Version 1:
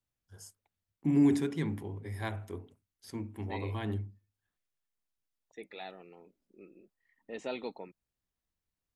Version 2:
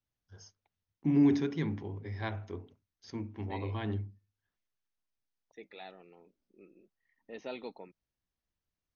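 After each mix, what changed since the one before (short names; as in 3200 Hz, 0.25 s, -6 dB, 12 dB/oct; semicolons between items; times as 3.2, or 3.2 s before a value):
second voice -3.5 dB; master: add brick-wall FIR low-pass 6600 Hz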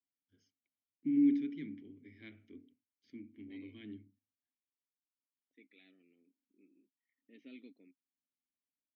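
master: add vowel filter i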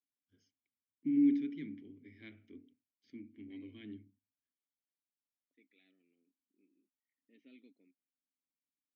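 second voice -7.0 dB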